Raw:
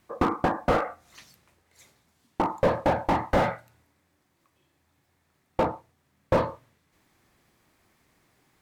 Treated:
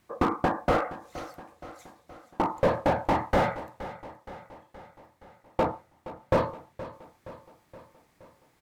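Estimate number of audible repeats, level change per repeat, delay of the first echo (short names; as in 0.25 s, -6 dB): 4, -5.0 dB, 0.471 s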